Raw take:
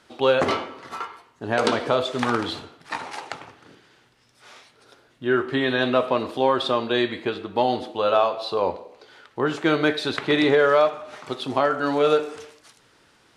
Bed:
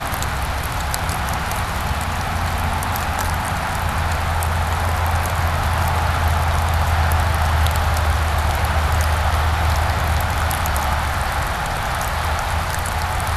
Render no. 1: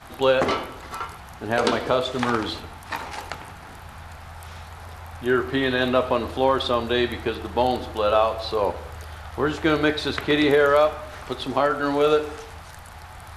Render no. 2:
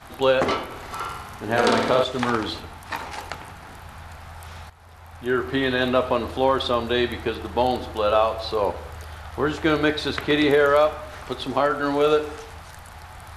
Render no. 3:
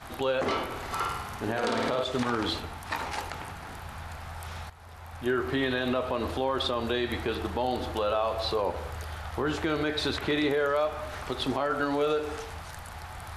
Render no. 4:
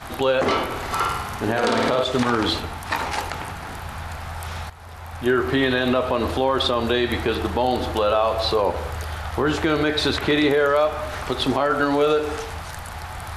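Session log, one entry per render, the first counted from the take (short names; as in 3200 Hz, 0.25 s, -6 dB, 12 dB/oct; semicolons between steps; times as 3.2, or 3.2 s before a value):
add bed -20 dB
0.65–2.04 flutter echo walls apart 9.1 m, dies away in 0.92 s; 4.7–5.55 fade in, from -13.5 dB
compressor, threshold -21 dBFS, peak gain reduction 8 dB; limiter -18 dBFS, peak gain reduction 9 dB
gain +8 dB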